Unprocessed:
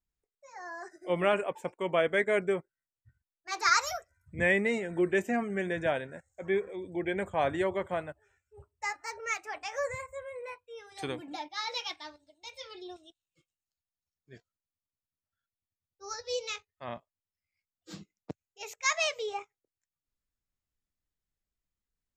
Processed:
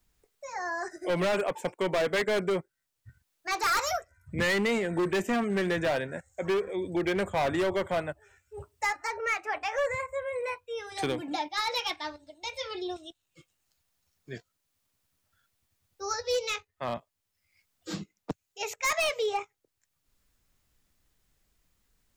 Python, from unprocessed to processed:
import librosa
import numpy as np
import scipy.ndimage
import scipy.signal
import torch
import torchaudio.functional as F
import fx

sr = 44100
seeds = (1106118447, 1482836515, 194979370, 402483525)

y = np.clip(10.0 ** (29.0 / 20.0) * x, -1.0, 1.0) / 10.0 ** (29.0 / 20.0)
y = fx.bass_treble(y, sr, bass_db=-4, treble_db=-9, at=(9.07, 10.33))
y = fx.band_squash(y, sr, depth_pct=40)
y = F.gain(torch.from_numpy(y), 6.0).numpy()